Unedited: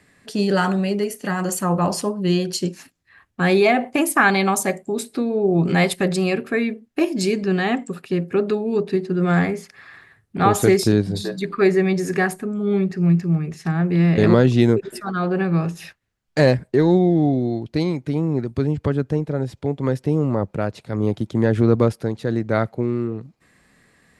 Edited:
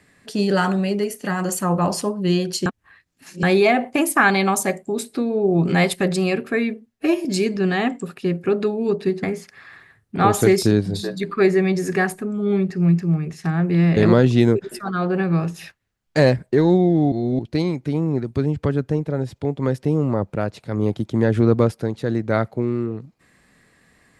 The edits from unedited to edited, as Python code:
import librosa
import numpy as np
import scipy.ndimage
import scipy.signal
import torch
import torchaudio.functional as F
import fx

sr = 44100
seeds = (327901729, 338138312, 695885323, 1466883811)

y = fx.edit(x, sr, fx.reverse_span(start_s=2.66, length_s=0.77),
    fx.stretch_span(start_s=6.86, length_s=0.26, factor=1.5),
    fx.cut(start_s=9.1, length_s=0.34),
    fx.reverse_span(start_s=17.33, length_s=0.27), tone=tone)